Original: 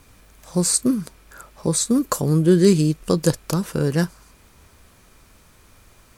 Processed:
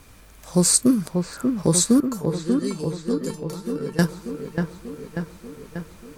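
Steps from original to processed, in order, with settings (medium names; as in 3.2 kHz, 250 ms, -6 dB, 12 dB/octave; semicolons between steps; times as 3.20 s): 2.00–3.99 s: feedback comb 450 Hz, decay 0.23 s, harmonics all, mix 90%; feedback echo behind a low-pass 589 ms, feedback 63%, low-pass 2.6 kHz, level -5 dB; trim +2 dB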